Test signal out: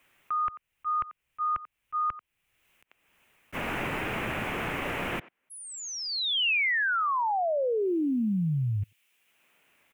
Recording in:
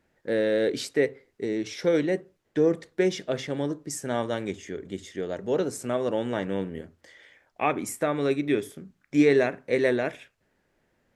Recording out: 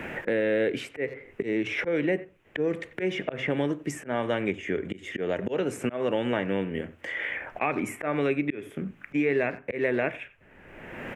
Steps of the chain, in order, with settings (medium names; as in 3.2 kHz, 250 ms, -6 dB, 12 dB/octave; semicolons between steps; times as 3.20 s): resonant high shelf 3.4 kHz -9.5 dB, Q 3; speakerphone echo 90 ms, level -21 dB; slow attack 368 ms; three bands compressed up and down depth 100%; trim +3 dB